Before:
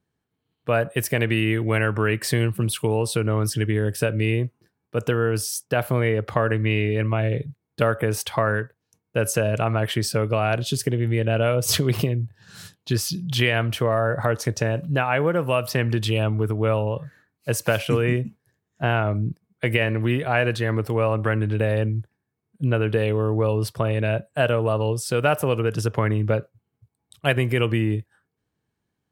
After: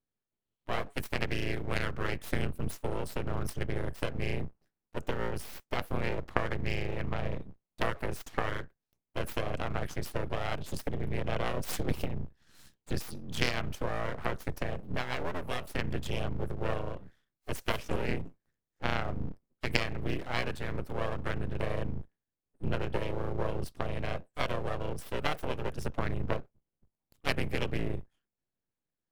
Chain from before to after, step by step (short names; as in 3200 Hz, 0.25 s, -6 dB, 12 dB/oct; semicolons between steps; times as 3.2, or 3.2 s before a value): octaver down 2 oct, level +2 dB; added harmonics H 3 -12 dB, 4 -26 dB, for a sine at -2.5 dBFS; full-wave rectifier; gain -2 dB